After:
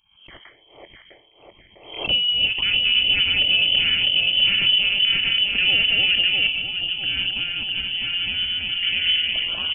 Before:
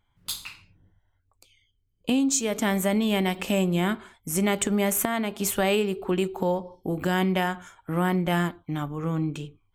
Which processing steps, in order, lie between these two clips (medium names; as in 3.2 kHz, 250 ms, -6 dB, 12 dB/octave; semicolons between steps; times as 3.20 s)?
backward echo that repeats 326 ms, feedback 76%, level -1 dB; doubling 24 ms -12.5 dB; touch-sensitive phaser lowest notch 220 Hz, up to 2.1 kHz, full sweep at -21 dBFS; bass shelf 120 Hz -5.5 dB; frequency inversion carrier 3.2 kHz; 6.47–8.83 s: ten-band graphic EQ 500 Hz -8 dB, 1 kHz +4 dB, 2 kHz -11 dB; loudness maximiser +11.5 dB; swell ahead of each attack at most 94 dB/s; trim -8 dB